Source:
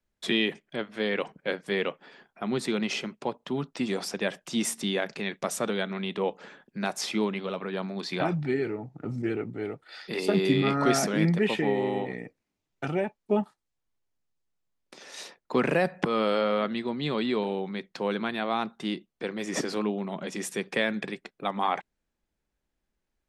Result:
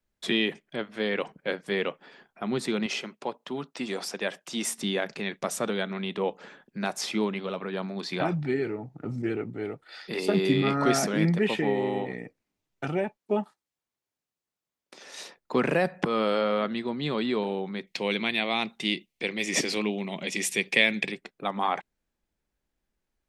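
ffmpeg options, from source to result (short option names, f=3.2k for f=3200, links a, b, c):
-filter_complex "[0:a]asettb=1/sr,asplit=3[a][b][c];[a]atrim=end=2.864[d];[b]atrim=start=2.86:end=4.79,asetpts=PTS-STARTPTS,afade=t=in:d=0.004:c=qsin,afade=t=out:st=1.926:d=0.004:c=qsin,highpass=f=340:p=1[e];[c]atrim=start=4.786[f];[d][e]acrossfade=d=0.004:c1=hsin:c2=qsin[g];[g][f]acrossfade=d=0.004:c1=qsin:c2=hsin,asettb=1/sr,asplit=3[h][i][j];[h]atrim=end=13.174[k];[i]atrim=start=13.17:end=15.05,asetpts=PTS-STARTPTS,afade=t=in:d=0.004:c=qsin,afade=t=out:st=1.876:d=0.004:c=qsin,highpass=f=220:p=1[l];[j]atrim=start=15.046[m];[k][l]acrossfade=d=0.004:c1=hsin:c2=qsin[n];[n][m]acrossfade=d=0.004:c1=qsin:c2=hsin,asettb=1/sr,asplit=3[o][p][q];[o]atrim=end=17.874[r];[p]atrim=start=17.87:end=21.12,asetpts=PTS-STARTPTS,afade=t=in:d=0.004:c=qsin,afade=t=out:st=3.246:d=0.004:c=qsin,highshelf=f=1.8k:t=q:w=3:g=6.5[s];[q]atrim=start=21.116[t];[r][s]acrossfade=d=0.004:c1=hsin:c2=qsin[u];[u][t]acrossfade=d=0.004:c1=qsin:c2=hsin"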